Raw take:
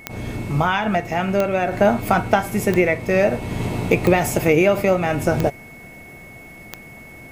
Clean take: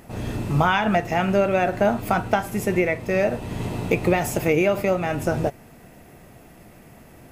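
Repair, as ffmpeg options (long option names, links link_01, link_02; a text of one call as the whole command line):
ffmpeg -i in.wav -af "adeclick=threshold=4,bandreject=frequency=2200:width=30,asetnsamples=nb_out_samples=441:pad=0,asendcmd='1.71 volume volume -4dB',volume=0dB" out.wav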